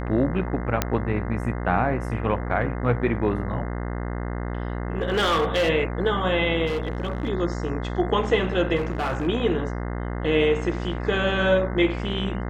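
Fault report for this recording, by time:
buzz 60 Hz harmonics 35 -29 dBFS
0.82 pop -5 dBFS
5.02–5.7 clipped -17.5 dBFS
6.66–7.29 clipped -22 dBFS
8.76–9.28 clipped -21.5 dBFS

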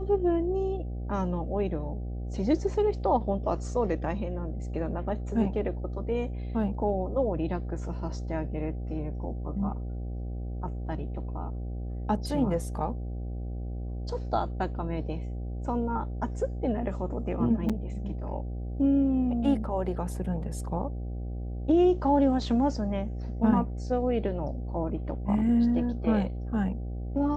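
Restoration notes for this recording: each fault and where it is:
buzz 60 Hz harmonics 13 -34 dBFS
17.69–17.7 gap 6.4 ms

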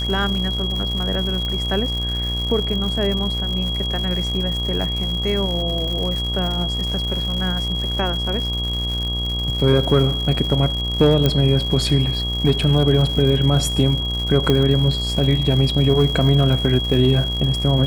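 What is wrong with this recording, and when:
buzz 60 Hz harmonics 21 -25 dBFS
crackle 190/s -26 dBFS
tone 3300 Hz -24 dBFS
1.45 pop -15 dBFS
11.26 pop -5 dBFS
14.5 pop -6 dBFS

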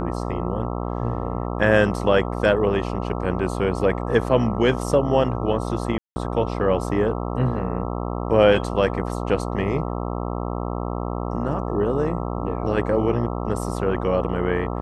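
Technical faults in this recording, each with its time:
buzz 60 Hz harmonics 22 -27 dBFS
5.98–6.16 gap 0.18 s

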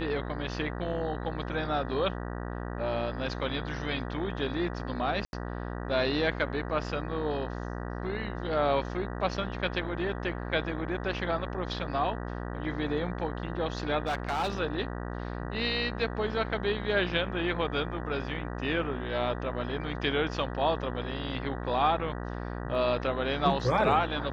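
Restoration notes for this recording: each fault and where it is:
buzz 60 Hz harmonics 32 -36 dBFS
5.25–5.33 gap 81 ms
14.07–14.6 clipped -25.5 dBFS

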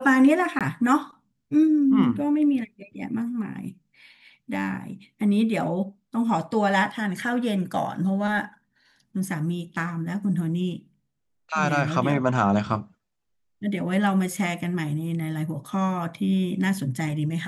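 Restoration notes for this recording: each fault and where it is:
0.59–0.61 gap 17 ms

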